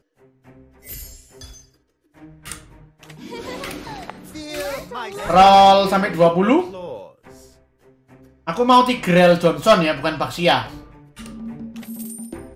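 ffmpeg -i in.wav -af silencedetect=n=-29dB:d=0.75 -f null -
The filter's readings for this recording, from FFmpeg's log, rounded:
silence_start: 0.00
silence_end: 0.88 | silence_duration: 0.88
silence_start: 1.44
silence_end: 2.46 | silence_duration: 1.01
silence_start: 7.03
silence_end: 8.47 | silence_duration: 1.44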